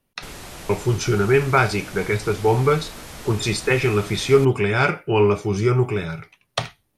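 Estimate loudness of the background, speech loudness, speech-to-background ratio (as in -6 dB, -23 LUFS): -37.5 LUFS, -20.5 LUFS, 17.0 dB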